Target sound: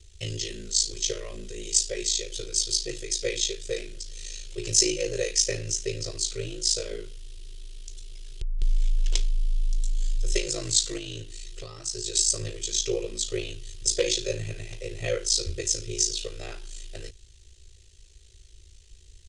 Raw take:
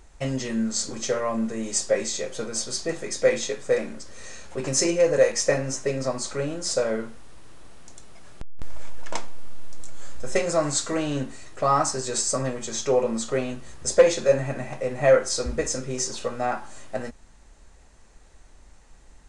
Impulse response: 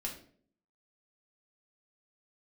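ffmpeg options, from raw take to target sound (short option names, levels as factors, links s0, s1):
-filter_complex "[0:a]aeval=exprs='val(0)*sin(2*PI*27*n/s)':c=same,asplit=3[s0][s1][s2];[s0]afade=t=out:st=10.97:d=0.02[s3];[s1]acompressor=threshold=0.0316:ratio=6,afade=t=in:st=10.97:d=0.02,afade=t=out:st=12.14:d=0.02[s4];[s2]afade=t=in:st=12.14:d=0.02[s5];[s3][s4][s5]amix=inputs=3:normalize=0,firequalizer=gain_entry='entry(120,0);entry(230,-29);entry(360,0);entry(570,-15);entry(810,-24);entry(3100,8);entry(8200,2)':delay=0.05:min_phase=1,volume=1.33"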